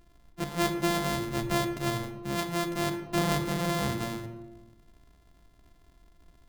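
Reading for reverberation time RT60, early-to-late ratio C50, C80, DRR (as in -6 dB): 1.1 s, 8.5 dB, 10.5 dB, 7.5 dB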